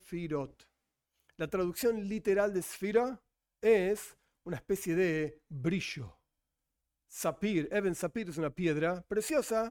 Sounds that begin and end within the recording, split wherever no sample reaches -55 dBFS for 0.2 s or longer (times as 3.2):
1.2–3.18
3.63–4.13
4.46–6.14